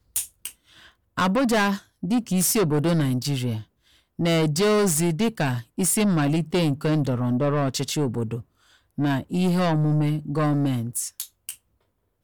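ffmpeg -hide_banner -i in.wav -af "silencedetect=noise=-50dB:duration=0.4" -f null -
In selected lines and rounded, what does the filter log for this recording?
silence_start: 11.57
silence_end: 12.24 | silence_duration: 0.67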